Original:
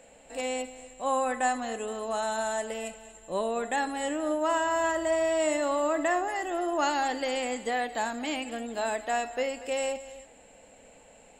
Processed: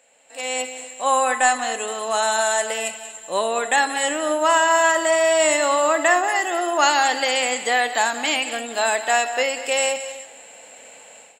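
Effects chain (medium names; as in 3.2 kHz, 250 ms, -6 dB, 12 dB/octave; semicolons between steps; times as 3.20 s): high-pass 1.3 kHz 6 dB/octave; level rider gain up to 15 dB; on a send: delay 184 ms -14.5 dB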